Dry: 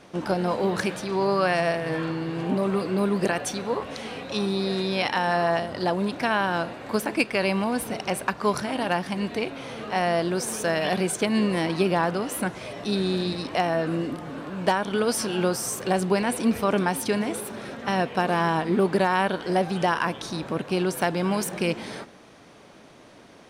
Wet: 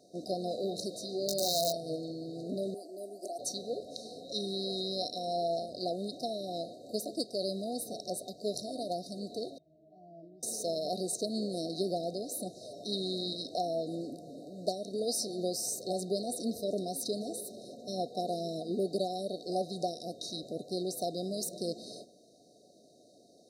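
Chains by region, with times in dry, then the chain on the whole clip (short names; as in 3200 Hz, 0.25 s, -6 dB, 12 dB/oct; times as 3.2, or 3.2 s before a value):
0.91–1.96 wrapped overs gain 14 dB + doubler 19 ms -5.5 dB
2.74–3.39 HPF 470 Hz + fixed phaser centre 720 Hz, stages 8
9.58–10.43 octave resonator D#, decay 0.31 s + Doppler distortion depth 0.14 ms
whole clip: FFT band-reject 750–3700 Hz; HPF 390 Hz 6 dB/oct; dynamic EQ 3300 Hz, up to +6 dB, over -50 dBFS, Q 0.9; gain -6.5 dB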